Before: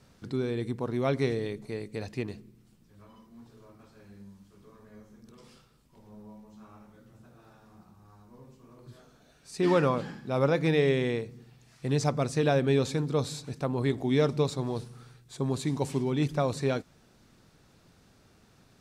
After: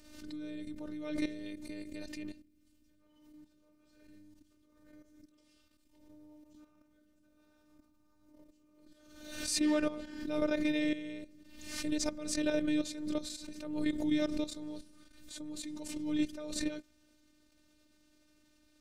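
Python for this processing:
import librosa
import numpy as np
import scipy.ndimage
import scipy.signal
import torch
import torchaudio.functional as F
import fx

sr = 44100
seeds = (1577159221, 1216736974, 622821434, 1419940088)

y = fx.peak_eq(x, sr, hz=970.0, db=-10.5, octaves=1.0)
y = fx.level_steps(y, sr, step_db=13)
y = fx.robotise(y, sr, hz=302.0)
y = fx.pre_swell(y, sr, db_per_s=57.0)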